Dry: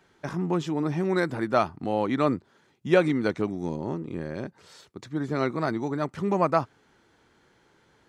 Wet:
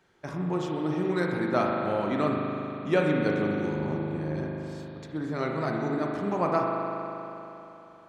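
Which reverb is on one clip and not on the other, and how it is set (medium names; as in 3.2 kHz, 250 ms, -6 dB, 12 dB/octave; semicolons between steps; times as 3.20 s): spring tank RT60 3.3 s, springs 39 ms, chirp 25 ms, DRR -1 dB; trim -4.5 dB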